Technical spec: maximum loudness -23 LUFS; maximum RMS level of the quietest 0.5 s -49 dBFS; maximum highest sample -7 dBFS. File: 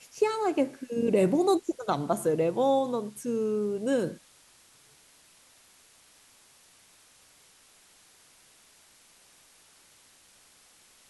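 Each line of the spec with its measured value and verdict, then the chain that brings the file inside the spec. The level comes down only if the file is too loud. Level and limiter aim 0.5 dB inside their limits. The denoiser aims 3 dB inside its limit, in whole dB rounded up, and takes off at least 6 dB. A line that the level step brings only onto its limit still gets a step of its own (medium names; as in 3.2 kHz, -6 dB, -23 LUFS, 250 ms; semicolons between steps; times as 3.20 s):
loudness -27.5 LUFS: pass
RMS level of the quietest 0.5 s -59 dBFS: pass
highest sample -12.5 dBFS: pass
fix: none needed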